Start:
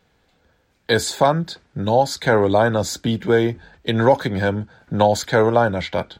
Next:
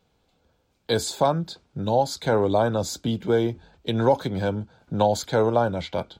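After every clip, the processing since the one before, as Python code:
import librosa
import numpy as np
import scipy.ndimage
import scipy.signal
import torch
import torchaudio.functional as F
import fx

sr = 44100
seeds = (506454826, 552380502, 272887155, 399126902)

y = fx.peak_eq(x, sr, hz=1800.0, db=-11.5, octaves=0.49)
y = F.gain(torch.from_numpy(y), -4.5).numpy()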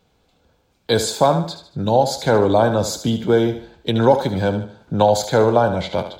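y = fx.echo_thinned(x, sr, ms=75, feedback_pct=41, hz=190.0, wet_db=-9.5)
y = F.gain(torch.from_numpy(y), 5.5).numpy()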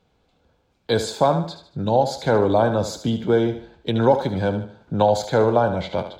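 y = fx.lowpass(x, sr, hz=4000.0, slope=6)
y = F.gain(torch.from_numpy(y), -2.5).numpy()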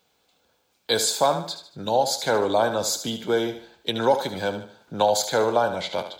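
y = fx.riaa(x, sr, side='recording')
y = F.gain(torch.from_numpy(y), -1.0).numpy()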